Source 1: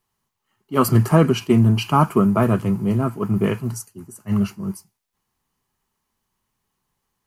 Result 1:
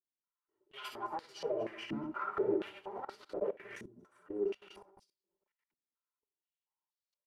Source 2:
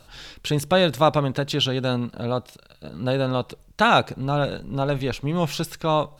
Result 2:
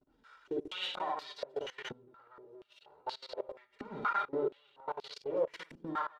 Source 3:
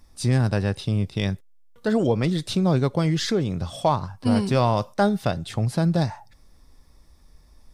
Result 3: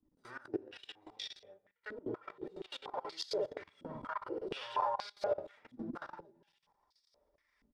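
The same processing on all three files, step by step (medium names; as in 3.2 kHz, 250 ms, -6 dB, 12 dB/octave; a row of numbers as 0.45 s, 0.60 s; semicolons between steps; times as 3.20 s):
comb filter that takes the minimum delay 2.1 ms; in parallel at +2 dB: compression 10:1, threshold -32 dBFS; on the sum: vibrato 6.2 Hz 39 cents; hum notches 50/100/150/200/250/300/350 Hz; flange 1.9 Hz, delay 2.6 ms, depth 2.5 ms, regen +9%; band-stop 2.5 kHz, Q 26; on a send: multi-tap echo 49/58/61/229/234 ms -14.5/-4.5/-11.5/-7/-6 dB; on the sum: simulated room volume 88 m³, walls mixed, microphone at 0.39 m; level held to a coarse grid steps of 22 dB; step-sequenced band-pass 4.2 Hz 250–4500 Hz; trim -2 dB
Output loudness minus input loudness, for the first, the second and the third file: -20.0 LU, -15.0 LU, -18.0 LU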